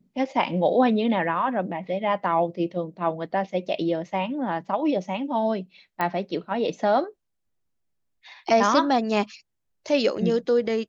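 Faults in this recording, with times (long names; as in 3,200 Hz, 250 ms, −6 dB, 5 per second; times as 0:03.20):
0:06.01: click −13 dBFS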